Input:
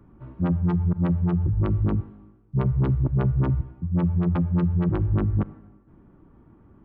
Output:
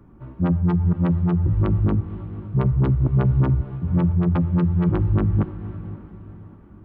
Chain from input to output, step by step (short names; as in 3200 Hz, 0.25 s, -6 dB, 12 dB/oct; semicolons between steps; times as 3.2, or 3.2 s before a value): diffused feedback echo 0.521 s, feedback 41%, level -14 dB; gain +3 dB